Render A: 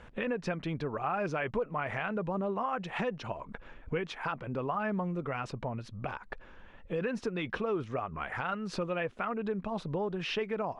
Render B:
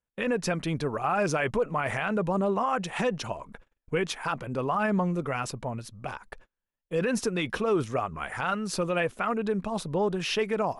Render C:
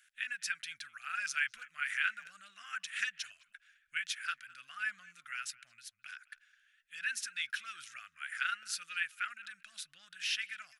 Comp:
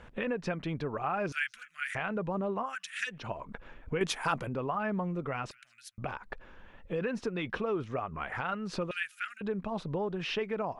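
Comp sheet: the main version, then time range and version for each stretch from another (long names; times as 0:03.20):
A
0:01.32–0:01.95: punch in from C
0:02.68–0:03.14: punch in from C, crossfade 0.16 s
0:04.01–0:04.49: punch in from B
0:05.51–0:05.98: punch in from C
0:08.91–0:09.41: punch in from C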